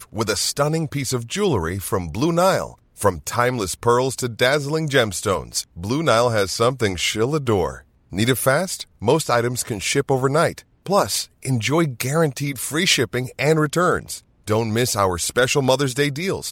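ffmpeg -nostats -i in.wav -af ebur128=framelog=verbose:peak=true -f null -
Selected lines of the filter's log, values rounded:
Integrated loudness:
  I:         -20.3 LUFS
  Threshold: -30.5 LUFS
Loudness range:
  LRA:         1.2 LU
  Threshold: -40.5 LUFS
  LRA low:   -21.0 LUFS
  LRA high:  -19.8 LUFS
True peak:
  Peak:       -2.5 dBFS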